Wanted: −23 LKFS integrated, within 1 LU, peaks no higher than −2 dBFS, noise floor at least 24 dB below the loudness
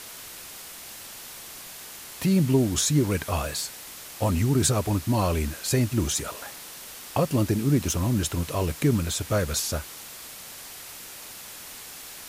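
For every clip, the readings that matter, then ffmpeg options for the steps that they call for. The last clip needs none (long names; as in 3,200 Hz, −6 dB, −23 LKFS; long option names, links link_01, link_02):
background noise floor −42 dBFS; target noise floor −49 dBFS; integrated loudness −25.0 LKFS; sample peak −8.0 dBFS; target loudness −23.0 LKFS
→ -af "afftdn=noise_reduction=7:noise_floor=-42"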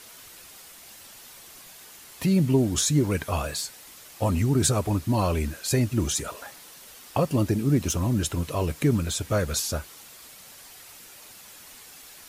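background noise floor −48 dBFS; target noise floor −50 dBFS
→ -af "afftdn=noise_reduction=6:noise_floor=-48"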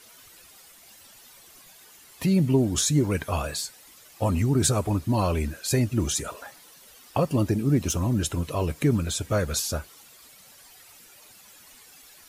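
background noise floor −52 dBFS; integrated loudness −25.0 LKFS; sample peak −8.0 dBFS; target loudness −23.0 LKFS
→ -af "volume=2dB"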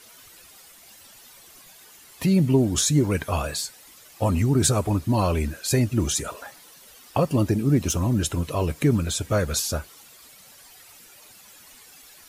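integrated loudness −23.0 LKFS; sample peak −6.0 dBFS; background noise floor −50 dBFS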